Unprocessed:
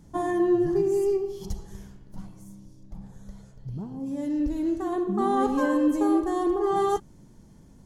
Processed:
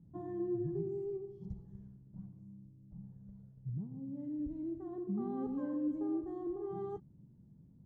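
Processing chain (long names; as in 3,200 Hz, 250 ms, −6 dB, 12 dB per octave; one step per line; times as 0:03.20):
resonant band-pass 140 Hz, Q 1.6
level −3.5 dB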